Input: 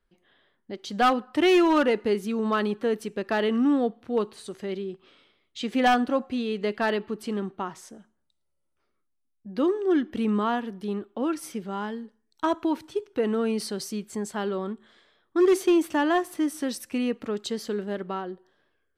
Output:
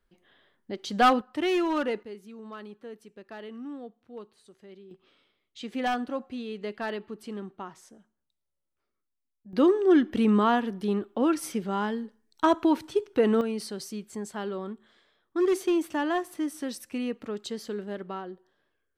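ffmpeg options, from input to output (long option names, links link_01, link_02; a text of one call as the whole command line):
ffmpeg -i in.wav -af "asetnsamples=nb_out_samples=441:pad=0,asendcmd='1.21 volume volume -6.5dB;2.03 volume volume -17dB;4.91 volume volume -7.5dB;9.53 volume volume 3dB;13.41 volume volume -4.5dB',volume=1dB" out.wav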